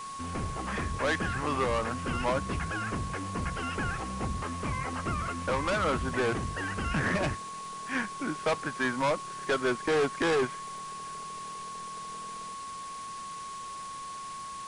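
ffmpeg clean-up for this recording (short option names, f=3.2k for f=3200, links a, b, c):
-af "adeclick=t=4,bandreject=f=1.1k:w=30,afwtdn=0.005"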